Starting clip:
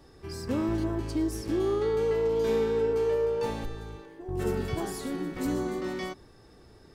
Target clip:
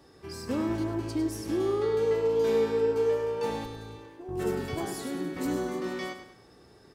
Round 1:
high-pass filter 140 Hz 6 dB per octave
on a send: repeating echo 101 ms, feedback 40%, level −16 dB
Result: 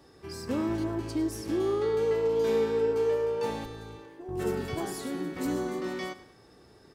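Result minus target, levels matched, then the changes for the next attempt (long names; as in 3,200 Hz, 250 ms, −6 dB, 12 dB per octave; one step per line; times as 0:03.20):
echo-to-direct −6.5 dB
change: repeating echo 101 ms, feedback 40%, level −9.5 dB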